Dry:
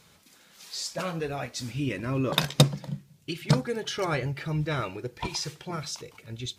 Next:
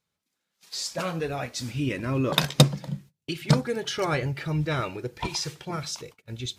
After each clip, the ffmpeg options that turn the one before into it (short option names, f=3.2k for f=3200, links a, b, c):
-af "agate=range=-26dB:threshold=-46dB:ratio=16:detection=peak,volume=2dB"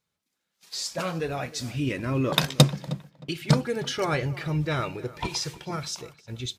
-filter_complex "[0:a]asplit=2[a][b];[b]adelay=311,lowpass=f=2.6k:p=1,volume=-18dB,asplit=2[c][d];[d]adelay=311,lowpass=f=2.6k:p=1,volume=0.27[e];[a][c][e]amix=inputs=3:normalize=0"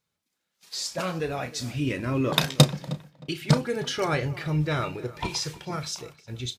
-filter_complex "[0:a]asplit=2[a][b];[b]adelay=33,volume=-12dB[c];[a][c]amix=inputs=2:normalize=0"